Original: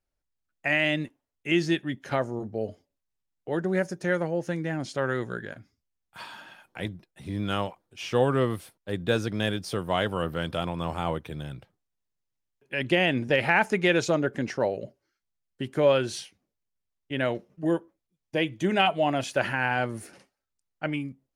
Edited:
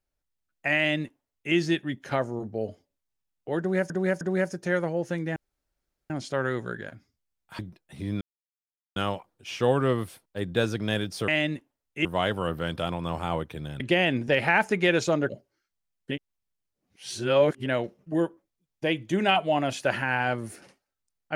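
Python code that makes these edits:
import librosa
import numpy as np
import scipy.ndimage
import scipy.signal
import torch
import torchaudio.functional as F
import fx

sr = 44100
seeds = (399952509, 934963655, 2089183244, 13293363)

y = fx.edit(x, sr, fx.duplicate(start_s=0.77, length_s=0.77, to_s=9.8),
    fx.repeat(start_s=3.59, length_s=0.31, count=3),
    fx.insert_room_tone(at_s=4.74, length_s=0.74),
    fx.cut(start_s=6.23, length_s=0.63),
    fx.insert_silence(at_s=7.48, length_s=0.75),
    fx.cut(start_s=11.55, length_s=1.26),
    fx.cut(start_s=14.3, length_s=0.5),
    fx.reverse_span(start_s=15.62, length_s=1.55), tone=tone)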